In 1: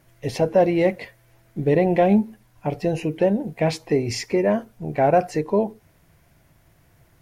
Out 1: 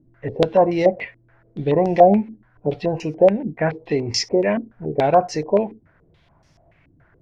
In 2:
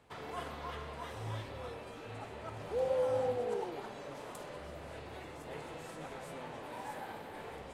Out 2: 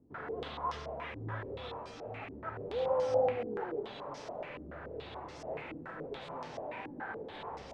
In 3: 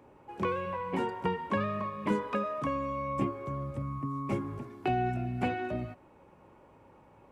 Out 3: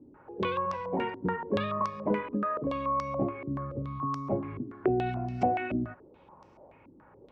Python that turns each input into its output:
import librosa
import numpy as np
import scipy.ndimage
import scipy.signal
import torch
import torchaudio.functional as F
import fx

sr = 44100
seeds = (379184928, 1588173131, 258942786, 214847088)

y = fx.filter_held_lowpass(x, sr, hz=7.0, low_hz=290.0, high_hz=5500.0)
y = y * librosa.db_to_amplitude(-1.0)